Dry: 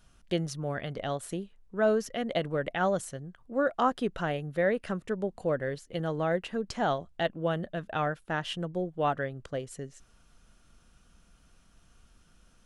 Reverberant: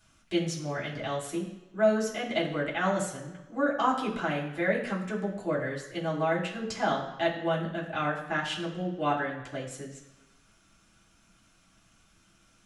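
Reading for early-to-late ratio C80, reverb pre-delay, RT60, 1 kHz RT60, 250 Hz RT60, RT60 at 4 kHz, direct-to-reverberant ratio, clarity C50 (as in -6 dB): 9.5 dB, 3 ms, 1.1 s, 1.1 s, 0.95 s, 1.0 s, -6.5 dB, 7.5 dB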